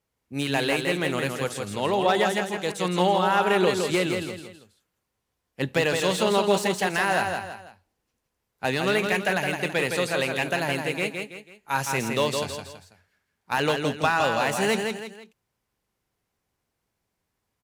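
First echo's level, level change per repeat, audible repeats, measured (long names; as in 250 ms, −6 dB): −5.0 dB, −8.5 dB, 3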